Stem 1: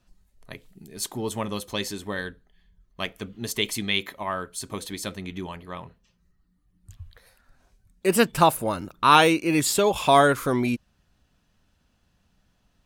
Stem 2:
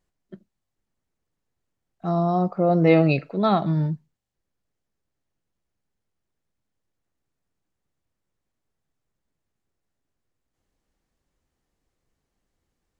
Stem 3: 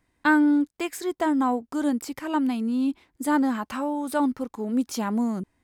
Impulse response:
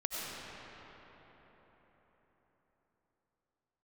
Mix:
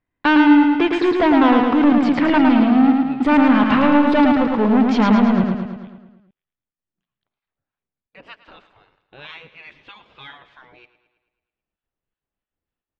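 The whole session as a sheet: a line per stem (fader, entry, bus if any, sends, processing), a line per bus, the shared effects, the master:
−14.0 dB, 0.10 s, no send, echo send −15 dB, gate on every frequency bin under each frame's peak −15 dB weak; leveller curve on the samples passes 2; two-band tremolo in antiphase 3.2 Hz, depth 70%, crossover 870 Hz
−11.5 dB, 0.00 s, no send, no echo send, downward compressor, threshold −21 dBFS, peak gain reduction 10 dB; gate pattern "xxx.xxxx." 199 BPM −12 dB
−1.5 dB, 0.00 s, no send, echo send −3.5 dB, leveller curve on the samples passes 5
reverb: not used
echo: repeating echo 109 ms, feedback 56%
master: low-pass filter 3,300 Hz 24 dB per octave

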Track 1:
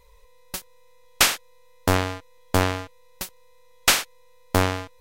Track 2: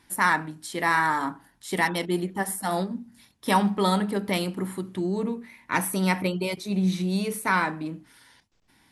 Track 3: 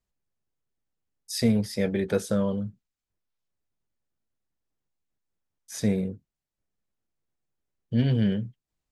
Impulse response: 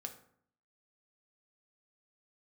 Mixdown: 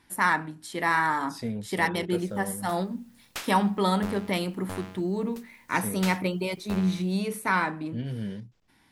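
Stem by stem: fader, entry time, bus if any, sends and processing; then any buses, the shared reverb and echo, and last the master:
−17.5 dB, 2.15 s, no send, bit-depth reduction 8 bits, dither triangular
−1.5 dB, 0.00 s, no send, no processing
−10.0 dB, 0.00 s, no send, no processing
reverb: not used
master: bass and treble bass 0 dB, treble −3 dB

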